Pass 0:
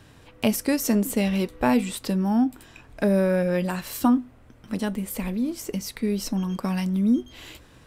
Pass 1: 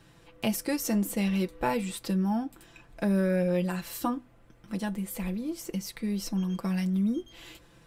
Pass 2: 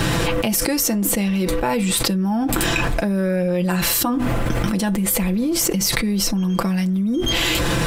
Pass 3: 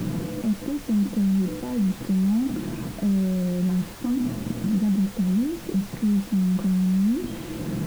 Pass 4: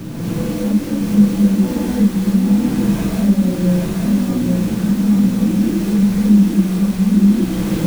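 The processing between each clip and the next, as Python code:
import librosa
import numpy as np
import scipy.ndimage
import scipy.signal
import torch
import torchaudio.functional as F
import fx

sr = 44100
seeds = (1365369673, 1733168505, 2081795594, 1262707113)

y1 = x + 0.65 * np.pad(x, (int(5.9 * sr / 1000.0), 0))[:len(x)]
y1 = F.gain(torch.from_numpy(y1), -6.5).numpy()
y2 = fx.env_flatten(y1, sr, amount_pct=100)
y2 = F.gain(torch.from_numpy(y2), 4.0).numpy()
y3 = fx.bandpass_q(y2, sr, hz=210.0, q=2.4)
y3 = fx.dmg_noise_colour(y3, sr, seeds[0], colour='pink', level_db=-41.0)
y4 = fx.recorder_agc(y3, sr, target_db=-17.5, rise_db_per_s=17.0, max_gain_db=30)
y4 = y4 + 10.0 ** (-4.0 / 20.0) * np.pad(y4, (int(834 * sr / 1000.0), 0))[:len(y4)]
y4 = fx.rev_gated(y4, sr, seeds[1], gate_ms=290, shape='rising', drr_db=-7.0)
y4 = F.gain(torch.from_numpy(y4), -1.5).numpy()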